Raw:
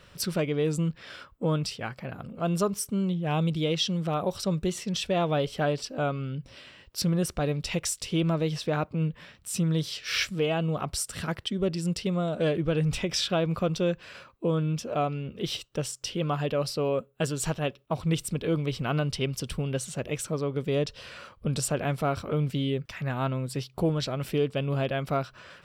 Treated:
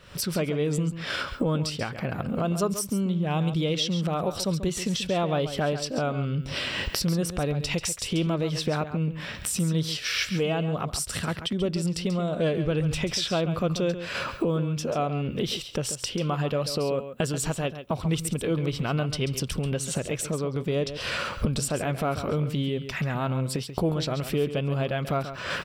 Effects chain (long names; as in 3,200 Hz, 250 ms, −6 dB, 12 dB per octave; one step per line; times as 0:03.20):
camcorder AGC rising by 61 dB per second
on a send: single-tap delay 137 ms −11 dB